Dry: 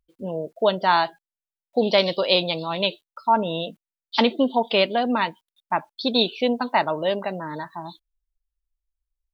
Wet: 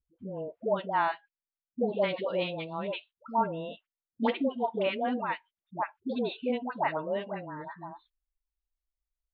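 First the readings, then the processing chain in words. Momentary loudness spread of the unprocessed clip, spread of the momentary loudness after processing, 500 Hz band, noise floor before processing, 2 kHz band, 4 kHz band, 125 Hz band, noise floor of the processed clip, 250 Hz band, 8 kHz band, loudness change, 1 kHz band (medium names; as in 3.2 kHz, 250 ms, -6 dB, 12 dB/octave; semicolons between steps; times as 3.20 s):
12 LU, 13 LU, -8.5 dB, under -85 dBFS, -9.5 dB, -18.0 dB, -7.5 dB, under -85 dBFS, -8.0 dB, no reading, -9.5 dB, -8.5 dB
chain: low-pass 2.6 kHz 24 dB/octave; peaking EQ 74 Hz +5 dB 1.4 oct; phase dispersion highs, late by 108 ms, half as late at 640 Hz; trim -8.5 dB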